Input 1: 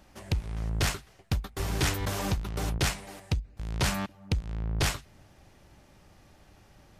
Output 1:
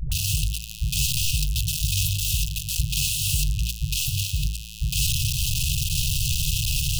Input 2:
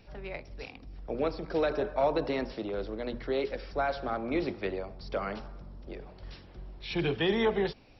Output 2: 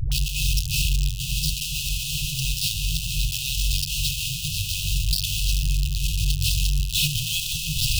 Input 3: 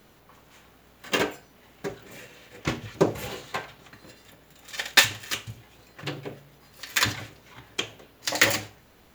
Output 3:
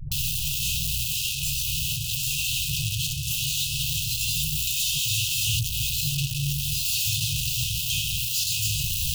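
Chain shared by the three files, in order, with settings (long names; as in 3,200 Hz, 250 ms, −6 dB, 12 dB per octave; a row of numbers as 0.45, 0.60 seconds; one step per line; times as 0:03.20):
sign of each sample alone
hum removal 54.79 Hz, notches 28
brick-wall band-stop 170–2,500 Hz
all-pass dispersion highs, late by 117 ms, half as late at 320 Hz
loudness normalisation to −24 LKFS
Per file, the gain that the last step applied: +11.0, +13.5, +7.5 decibels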